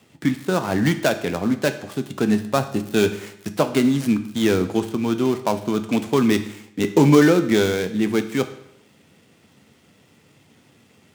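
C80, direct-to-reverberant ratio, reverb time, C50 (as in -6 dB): 15.0 dB, 8.5 dB, 0.75 s, 12.0 dB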